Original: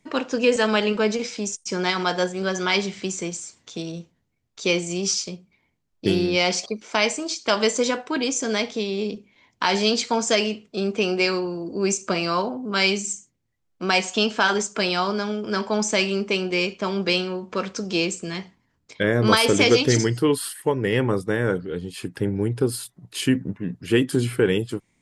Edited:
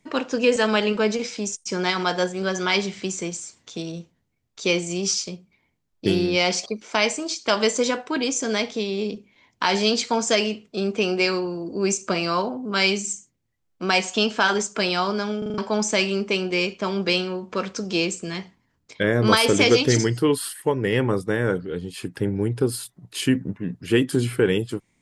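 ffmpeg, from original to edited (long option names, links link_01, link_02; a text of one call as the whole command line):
ffmpeg -i in.wav -filter_complex "[0:a]asplit=6[link_01][link_02][link_03][link_04][link_05][link_06];[link_01]atrim=end=15.422[link_07];[link_02]atrim=start=15.378:end=15.422[link_08];[link_03]atrim=start=15.378:end=15.422[link_09];[link_04]atrim=start=15.378:end=15.422[link_10];[link_05]atrim=start=15.378:end=15.422[link_11];[link_06]atrim=start=15.578[link_12];[link_07][link_08]acrossfade=duration=0.004:curve1=hsin:curve2=hsin[link_13];[link_13][link_09]acrossfade=duration=0.004:curve1=hsin:curve2=hsin[link_14];[link_14][link_10]acrossfade=duration=0.004:curve1=hsin:curve2=hsin[link_15];[link_15][link_11]acrossfade=duration=0.004:curve1=hsin:curve2=hsin[link_16];[link_16][link_12]acrossfade=duration=0.004:curve1=hsin:curve2=hsin" out.wav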